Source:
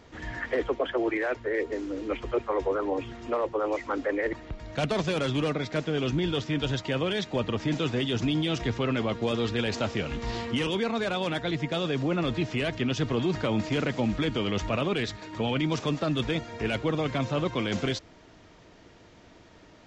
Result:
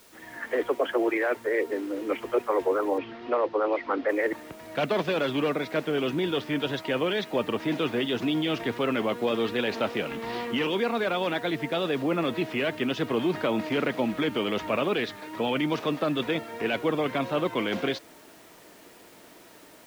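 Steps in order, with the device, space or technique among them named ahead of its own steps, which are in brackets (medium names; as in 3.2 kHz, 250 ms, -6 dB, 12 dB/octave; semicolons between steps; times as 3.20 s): dictaphone (band-pass 250–3600 Hz; level rider gain up to 9 dB; wow and flutter; white noise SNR 26 dB); 2.98–4.09 s: steep low-pass 5 kHz 36 dB/octave; treble shelf 6.7 kHz -4 dB; trim -6 dB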